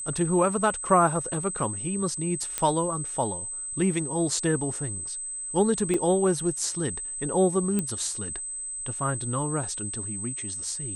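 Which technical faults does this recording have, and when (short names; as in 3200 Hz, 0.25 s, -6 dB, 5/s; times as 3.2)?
tone 8200 Hz -32 dBFS
2.58 pop -11 dBFS
5.94 gap 3.3 ms
7.79 pop -13 dBFS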